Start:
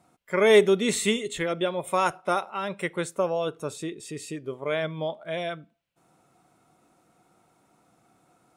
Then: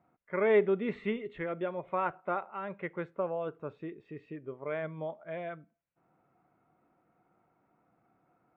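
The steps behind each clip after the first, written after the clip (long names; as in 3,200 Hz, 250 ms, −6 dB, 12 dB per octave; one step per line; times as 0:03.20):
low-pass filter 2,200 Hz 24 dB per octave
level −7.5 dB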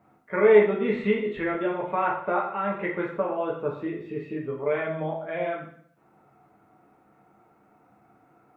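in parallel at +2 dB: downward compressor, threshold −37 dBFS, peak gain reduction 16 dB
on the sum: dense smooth reverb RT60 0.61 s, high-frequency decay 0.9×, DRR −3 dB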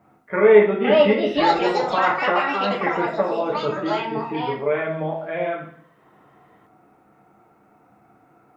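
delay with pitch and tempo change per echo 608 ms, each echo +6 semitones, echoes 2
level +4 dB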